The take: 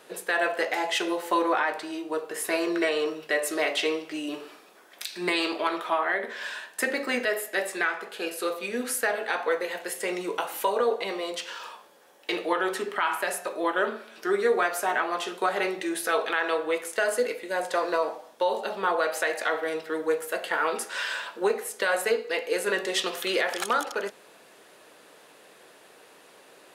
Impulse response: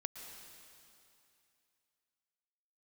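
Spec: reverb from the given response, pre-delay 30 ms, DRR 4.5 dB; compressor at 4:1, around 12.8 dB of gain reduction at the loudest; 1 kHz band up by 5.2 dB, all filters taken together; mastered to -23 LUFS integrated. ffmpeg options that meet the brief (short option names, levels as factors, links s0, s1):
-filter_complex "[0:a]equalizer=f=1000:t=o:g=6.5,acompressor=threshold=0.0251:ratio=4,asplit=2[s0][s1];[1:a]atrim=start_sample=2205,adelay=30[s2];[s1][s2]afir=irnorm=-1:irlink=0,volume=0.708[s3];[s0][s3]amix=inputs=2:normalize=0,volume=3.35"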